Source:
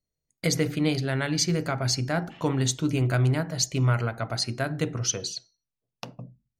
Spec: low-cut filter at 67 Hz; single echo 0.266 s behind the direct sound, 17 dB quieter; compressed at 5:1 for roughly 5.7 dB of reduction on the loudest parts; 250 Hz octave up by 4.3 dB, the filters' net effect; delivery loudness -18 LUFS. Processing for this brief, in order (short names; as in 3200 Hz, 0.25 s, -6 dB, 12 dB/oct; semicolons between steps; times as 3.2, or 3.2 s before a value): HPF 67 Hz; bell 250 Hz +6 dB; compressor 5:1, threshold -23 dBFS; echo 0.266 s -17 dB; gain +10.5 dB